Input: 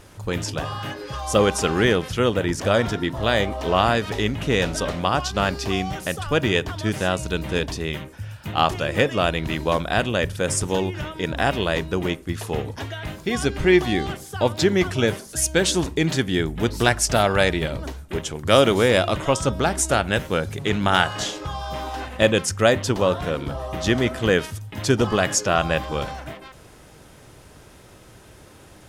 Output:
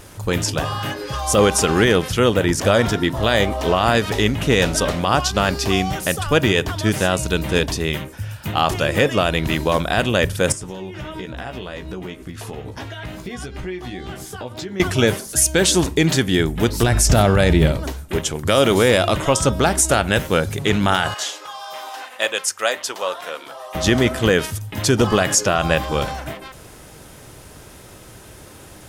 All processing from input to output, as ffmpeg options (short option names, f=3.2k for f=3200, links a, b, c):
-filter_complex "[0:a]asettb=1/sr,asplit=3[a][b][c];[a]atrim=end=10.524[d];[b]atrim=start=10.52:end=14.8,asetpts=PTS-STARTPTS,afade=t=in:d=0.004:c=qsin,afade=t=out:st=4.276:d=0.004:c=qsin,acompressor=threshold=-33dB:ratio=8:attack=3.2:release=140:knee=1:detection=peak,highshelf=f=7.3k:g=-10,asplit=2[e][f];[f]adelay=16,volume=-6dB[g];[e][g]amix=inputs=2:normalize=0,atrim=end_sample=188748[h];[c]atrim=start=14.796[i];[d][h]acrossfade=d=0.004:c1=hsin:c2=qsin[j];[j][i]acrossfade=d=0.004:c1=qsin:c2=hsin,asettb=1/sr,asplit=3[k][l][m];[k]atrim=end=16.834[n];[l]atrim=start=16.83:end=17.72,asetpts=PTS-STARTPTS,afade=t=in:d=0.004:c=qsin,afade=t=out:st=0.886:d=0.004:c=qsin,lowshelf=f=350:g=11.5,bandreject=f=219.8:t=h:w=4,bandreject=f=439.6:t=h:w=4,bandreject=f=659.4:t=h:w=4,bandreject=f=879.2:t=h:w=4,bandreject=f=1.099k:t=h:w=4,bandreject=f=1.3188k:t=h:w=4,bandreject=f=1.5386k:t=h:w=4,bandreject=f=1.7584k:t=h:w=4,bandreject=f=1.9782k:t=h:w=4,bandreject=f=2.198k:t=h:w=4,bandreject=f=2.4178k:t=h:w=4,bandreject=f=2.6376k:t=h:w=4,bandreject=f=2.8574k:t=h:w=4,bandreject=f=3.0772k:t=h:w=4,bandreject=f=3.297k:t=h:w=4,bandreject=f=3.5168k:t=h:w=4,bandreject=f=3.7366k:t=h:w=4,bandreject=f=3.9564k:t=h:w=4,bandreject=f=4.1762k:t=h:w=4,bandreject=f=4.396k:t=h:w=4,bandreject=f=4.6158k:t=h:w=4,bandreject=f=4.8356k:t=h:w=4,bandreject=f=5.0554k:t=h:w=4,bandreject=f=5.2752k:t=h:w=4,bandreject=f=5.495k:t=h:w=4,bandreject=f=5.7148k:t=h:w=4,bandreject=f=5.9346k:t=h:w=4,bandreject=f=6.1544k:t=h:w=4,bandreject=f=6.3742k:t=h:w=4,bandreject=f=6.594k:t=h:w=4,bandreject=f=6.8138k:t=h:w=4,bandreject=f=7.0336k:t=h:w=4,bandreject=f=7.2534k:t=h:w=4,bandreject=f=7.4732k:t=h:w=4,bandreject=f=7.693k:t=h:w=4,bandreject=f=7.9128k:t=h:w=4[o];[m]atrim=start=17.716[p];[n][o]acrossfade=d=0.004:c1=hsin:c2=qsin[q];[q][p]acrossfade=d=0.004:c1=qsin:c2=hsin,asettb=1/sr,asplit=3[r][s][t];[r]atrim=end=21.144[u];[s]atrim=start=21.14:end=23.75,asetpts=PTS-STARTPTS,afade=t=in:d=0.004:c=qsin,afade=t=out:st=2.606:d=0.004:c=qsin,highpass=720,flanger=delay=1.4:depth=2.9:regen=-74:speed=1.6:shape=triangular[v];[t]atrim=start=23.746[w];[u][v]acrossfade=d=0.004:c1=hsin:c2=qsin[x];[x][w]acrossfade=d=0.004:c1=qsin:c2=hsin,highshelf=f=8.4k:g=8,alimiter=limit=-10dB:level=0:latency=1:release=35,volume=5dB"